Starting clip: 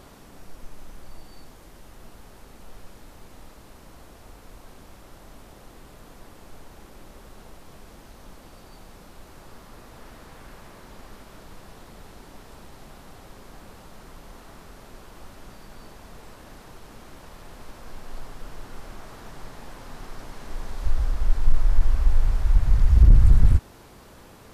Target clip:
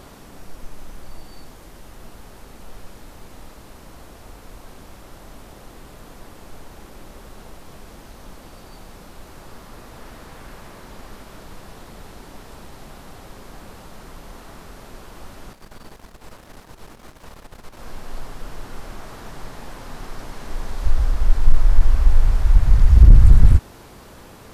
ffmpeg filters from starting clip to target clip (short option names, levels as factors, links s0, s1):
-filter_complex "[0:a]asettb=1/sr,asplit=3[s0][s1][s2];[s0]atrim=end=15.534[s3];[s1]atrim=start=15.53:end=17.8,asetpts=PTS-STARTPTS,afade=t=in:d=0.004:c=qsin,afade=t=out:st=2.266:d=0.004:c=qsin,aeval=exprs='if(lt(val(0),0),0.251*val(0),val(0))':c=same[s4];[s2]atrim=start=17.796[s5];[s3][s4]acrossfade=d=0.004:c1=hsin:c2=qsin[s6];[s6][s5]acrossfade=d=0.004:c1=qsin:c2=hsin,volume=1.78"